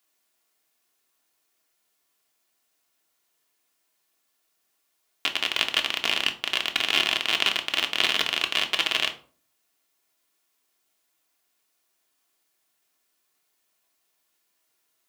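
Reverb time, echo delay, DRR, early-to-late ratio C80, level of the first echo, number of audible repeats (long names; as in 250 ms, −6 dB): 0.45 s, no echo audible, 3.5 dB, 18.5 dB, no echo audible, no echo audible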